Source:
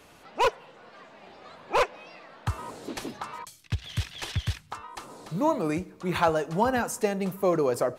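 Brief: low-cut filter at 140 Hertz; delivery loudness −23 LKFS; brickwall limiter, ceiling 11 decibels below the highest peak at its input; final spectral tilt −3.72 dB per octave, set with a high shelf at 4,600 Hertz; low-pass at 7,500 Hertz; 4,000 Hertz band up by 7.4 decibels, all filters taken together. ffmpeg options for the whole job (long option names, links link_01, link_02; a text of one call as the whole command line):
ffmpeg -i in.wav -af "highpass=140,lowpass=7500,equalizer=frequency=4000:width_type=o:gain=6,highshelf=frequency=4600:gain=8,volume=9dB,alimiter=limit=-10.5dB:level=0:latency=1" out.wav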